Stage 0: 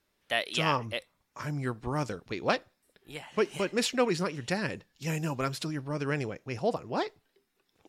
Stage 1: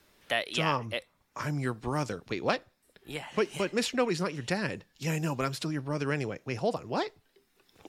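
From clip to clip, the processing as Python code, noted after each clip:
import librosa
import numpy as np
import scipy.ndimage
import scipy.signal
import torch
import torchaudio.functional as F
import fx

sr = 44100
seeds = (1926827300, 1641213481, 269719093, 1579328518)

y = fx.band_squash(x, sr, depth_pct=40)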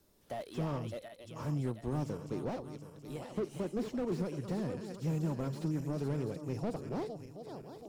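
y = fx.reverse_delay_fb(x, sr, ms=363, feedback_pct=66, wet_db=-11.5)
y = fx.peak_eq(y, sr, hz=2100.0, db=-15.0, octaves=2.3)
y = fx.slew_limit(y, sr, full_power_hz=13.0)
y = y * 10.0 ** (-1.5 / 20.0)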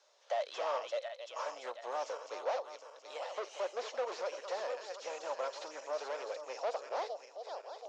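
y = scipy.signal.sosfilt(scipy.signal.cheby1(4, 1.0, [540.0, 6600.0], 'bandpass', fs=sr, output='sos'), x)
y = y * 10.0 ** (7.5 / 20.0)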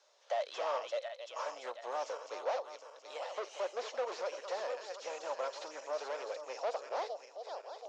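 y = x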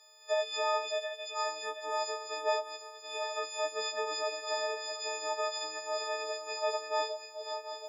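y = fx.freq_snap(x, sr, grid_st=6)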